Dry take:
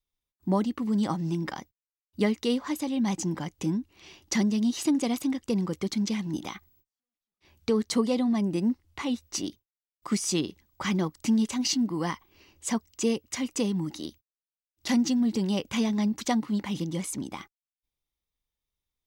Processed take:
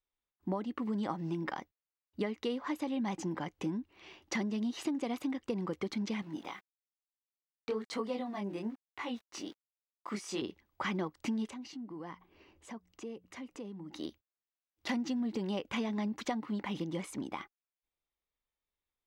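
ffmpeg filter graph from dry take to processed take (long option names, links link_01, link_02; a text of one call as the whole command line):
ffmpeg -i in.wav -filter_complex "[0:a]asettb=1/sr,asplit=3[link_01][link_02][link_03];[link_01]atrim=end=6.224[link_04];[link_02]atrim=start=6.22:end=10.42,asetpts=PTS-STARTPTS,afade=type=in:duration=0.004:curve=qsin,afade=type=out:start_time=4.196:duration=0.004:curve=qsin,lowshelf=frequency=290:gain=-6.5,flanger=delay=18.5:depth=7:speed=1.1,aeval=exprs='val(0)*gte(abs(val(0)),0.00237)':channel_layout=same[link_05];[link_03]atrim=start=10.416[link_06];[link_04][link_05]acrossfade=duration=0.004:curve1=hsin:curve2=qsin[link_07];[link_07][link_06]acrossfade=duration=0.004:curve1=qsin:curve2=hsin,asettb=1/sr,asplit=3[link_08][link_09][link_10];[link_08]atrim=end=11.504[link_11];[link_09]atrim=start=11.5:end=13.93,asetpts=PTS-STARTPTS,afade=type=in:duration=0.004:curve=qsin,afade=type=out:start_time=2.426:duration=0.004:curve=qsin,tiltshelf=frequency=770:gain=3.5,bandreject=frequency=60:width_type=h:width=6,bandreject=frequency=120:width_type=h:width=6,bandreject=frequency=180:width_type=h:width=6,acompressor=threshold=-42dB:ratio=3:attack=3.2:release=140:knee=1:detection=peak[link_12];[link_10]atrim=start=13.926[link_13];[link_11][link_12]acrossfade=duration=0.004:curve1=hsin:curve2=qsin[link_14];[link_14][link_13]acrossfade=duration=0.004:curve1=qsin:curve2=hsin,bass=frequency=250:gain=-9,treble=frequency=4000:gain=-15,acompressor=threshold=-31dB:ratio=6" out.wav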